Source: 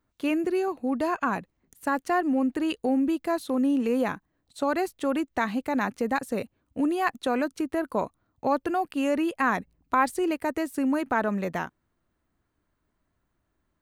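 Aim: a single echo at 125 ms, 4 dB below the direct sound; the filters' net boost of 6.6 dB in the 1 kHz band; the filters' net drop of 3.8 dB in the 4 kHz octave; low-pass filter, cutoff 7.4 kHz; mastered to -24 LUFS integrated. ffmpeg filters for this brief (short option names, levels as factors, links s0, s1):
-af "lowpass=7400,equalizer=f=1000:t=o:g=8.5,equalizer=f=4000:t=o:g=-6,aecho=1:1:125:0.631,volume=0.891"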